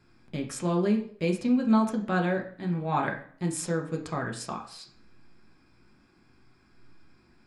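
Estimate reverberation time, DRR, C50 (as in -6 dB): 0.55 s, 1.0 dB, 9.5 dB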